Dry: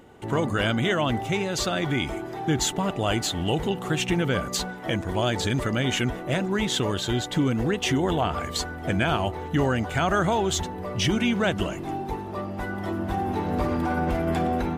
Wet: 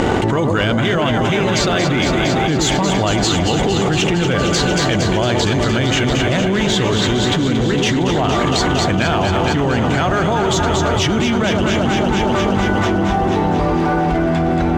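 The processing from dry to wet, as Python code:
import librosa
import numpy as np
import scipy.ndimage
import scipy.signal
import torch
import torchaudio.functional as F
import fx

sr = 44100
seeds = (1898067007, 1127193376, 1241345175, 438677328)

y = scipy.signal.sosfilt(scipy.signal.butter(4, 7300.0, 'lowpass', fs=sr, output='sos'), x)
y = fx.echo_alternate(y, sr, ms=115, hz=940.0, feedback_pct=89, wet_db=-5.5)
y = fx.leveller(y, sr, passes=1)
y = fx.env_flatten(y, sr, amount_pct=100)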